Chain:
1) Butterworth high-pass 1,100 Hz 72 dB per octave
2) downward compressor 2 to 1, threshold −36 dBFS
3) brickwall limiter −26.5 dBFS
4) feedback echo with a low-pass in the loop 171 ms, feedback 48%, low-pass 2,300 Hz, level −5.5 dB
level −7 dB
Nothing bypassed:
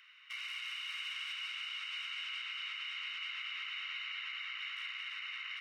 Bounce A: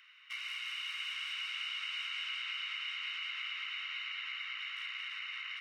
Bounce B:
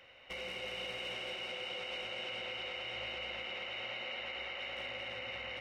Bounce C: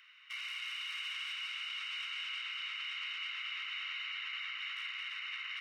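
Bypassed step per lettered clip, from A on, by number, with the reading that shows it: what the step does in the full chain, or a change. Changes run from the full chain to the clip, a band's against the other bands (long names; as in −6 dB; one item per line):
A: 3, change in crest factor +1.5 dB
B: 1, 1 kHz band +6.0 dB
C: 2, average gain reduction 5.5 dB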